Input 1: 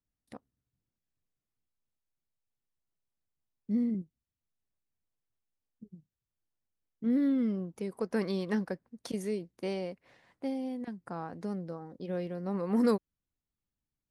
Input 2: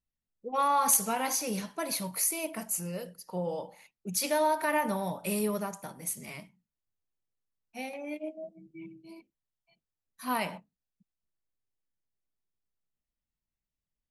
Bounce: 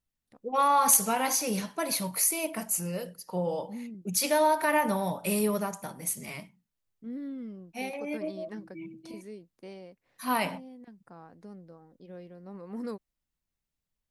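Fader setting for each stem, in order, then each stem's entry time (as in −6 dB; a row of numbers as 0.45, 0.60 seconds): −10.5, +3.0 decibels; 0.00, 0.00 seconds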